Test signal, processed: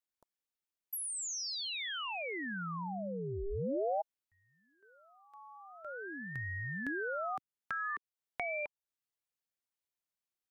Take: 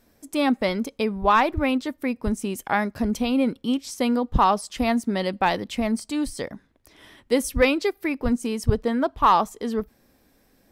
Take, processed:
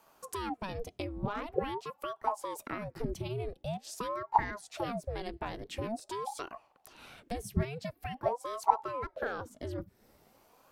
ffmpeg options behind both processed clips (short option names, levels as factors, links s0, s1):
-filter_complex "[0:a]acrossover=split=130[s0][s1];[s1]acompressor=threshold=0.0158:ratio=4[s2];[s0][s2]amix=inputs=2:normalize=0,aeval=exprs='val(0)*sin(2*PI*510*n/s+510*0.75/0.46*sin(2*PI*0.46*n/s))':c=same"